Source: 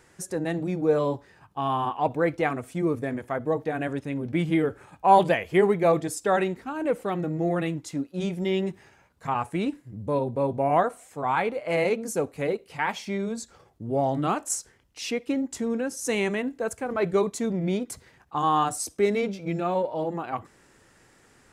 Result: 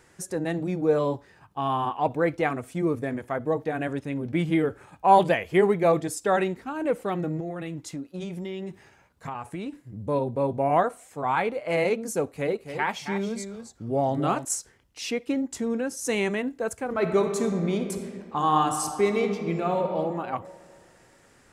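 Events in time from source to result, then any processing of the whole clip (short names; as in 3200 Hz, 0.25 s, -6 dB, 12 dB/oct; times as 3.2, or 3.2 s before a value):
7.4–9.91 compressor, threshold -30 dBFS
12.28–14.45 echo 0.271 s -9 dB
16.86–19.98 reverb throw, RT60 2.1 s, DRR 5.5 dB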